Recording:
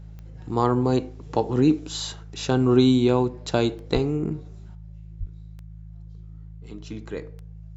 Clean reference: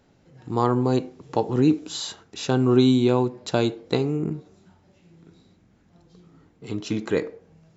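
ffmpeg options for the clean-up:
ffmpeg -i in.wav -filter_complex "[0:a]adeclick=threshold=4,bandreject=frequency=53.5:width_type=h:width=4,bandreject=frequency=107:width_type=h:width=4,bandreject=frequency=160.5:width_type=h:width=4,asplit=3[link_01][link_02][link_03];[link_01]afade=type=out:start_time=3.93:duration=0.02[link_04];[link_02]highpass=frequency=140:width=0.5412,highpass=frequency=140:width=1.3066,afade=type=in:start_time=3.93:duration=0.02,afade=type=out:start_time=4.05:duration=0.02[link_05];[link_03]afade=type=in:start_time=4.05:duration=0.02[link_06];[link_04][link_05][link_06]amix=inputs=3:normalize=0,asplit=3[link_07][link_08][link_09];[link_07]afade=type=out:start_time=5.19:duration=0.02[link_10];[link_08]highpass=frequency=140:width=0.5412,highpass=frequency=140:width=1.3066,afade=type=in:start_time=5.19:duration=0.02,afade=type=out:start_time=5.31:duration=0.02[link_11];[link_09]afade=type=in:start_time=5.31:duration=0.02[link_12];[link_10][link_11][link_12]amix=inputs=3:normalize=0,asetnsamples=nb_out_samples=441:pad=0,asendcmd='4.75 volume volume 10dB',volume=0dB" out.wav

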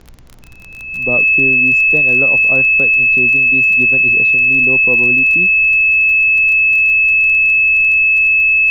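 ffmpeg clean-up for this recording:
ffmpeg -i in.wav -af "adeclick=threshold=4,bandreject=frequency=61.5:width_type=h:width=4,bandreject=frequency=123:width_type=h:width=4,bandreject=frequency=184.5:width_type=h:width=4,bandreject=frequency=246:width_type=h:width=4,bandreject=frequency=307.5:width_type=h:width=4,bandreject=frequency=2600:width=30,agate=range=-21dB:threshold=-19dB" out.wav

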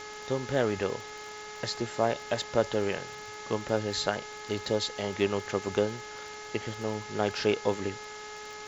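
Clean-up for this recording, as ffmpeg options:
ffmpeg -i in.wav -af "adeclick=threshold=4,bandreject=frequency=422.9:width_type=h:width=4,bandreject=frequency=845.8:width_type=h:width=4,bandreject=frequency=1268.7:width_type=h:width=4,bandreject=frequency=1691.6:width_type=h:width=4,bandreject=frequency=2114.5:width_type=h:width=4,afwtdn=0.0071" out.wav

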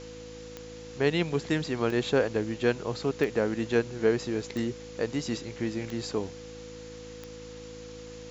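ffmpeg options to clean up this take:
ffmpeg -i in.wav -af "adeclick=threshold=4,bandreject=frequency=54.2:width_type=h:width=4,bandreject=frequency=108.4:width_type=h:width=4,bandreject=frequency=162.6:width_type=h:width=4,bandreject=frequency=216.8:width_type=h:width=4,bandreject=frequency=271:width_type=h:width=4,bandreject=frequency=325.2:width_type=h:width=4,bandreject=frequency=490:width=30,afftdn=noise_reduction=30:noise_floor=-44" out.wav

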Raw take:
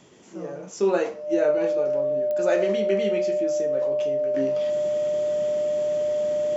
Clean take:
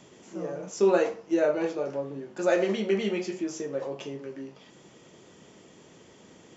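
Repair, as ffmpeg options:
ffmpeg -i in.wav -af "adeclick=threshold=4,bandreject=frequency=600:width=30,asetnsamples=nb_out_samples=441:pad=0,asendcmd='4.34 volume volume -11dB',volume=0dB" out.wav

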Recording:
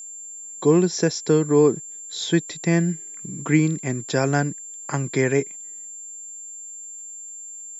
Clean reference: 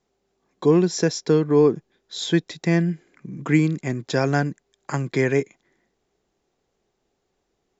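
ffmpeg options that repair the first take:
ffmpeg -i in.wav -af "adeclick=threshold=4,bandreject=frequency=7300:width=30" out.wav

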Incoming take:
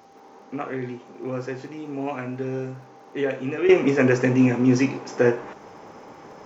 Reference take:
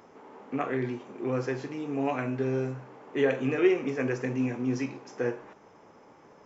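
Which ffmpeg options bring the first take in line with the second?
ffmpeg -i in.wav -af "adeclick=threshold=4,bandreject=frequency=790:width=30,agate=range=-21dB:threshold=-39dB,asetnsamples=nb_out_samples=441:pad=0,asendcmd='3.69 volume volume -11dB',volume=0dB" out.wav

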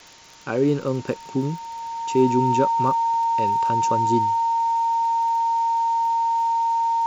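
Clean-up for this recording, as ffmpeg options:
ffmpeg -i in.wav -af "adeclick=threshold=4,bandreject=frequency=920:width=30,afwtdn=0.0063" out.wav

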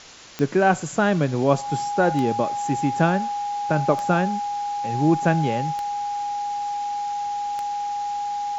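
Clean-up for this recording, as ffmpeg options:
ffmpeg -i in.wav -af "adeclick=threshold=4,bandreject=frequency=820:width=30,afwtdn=0.0089" out.wav

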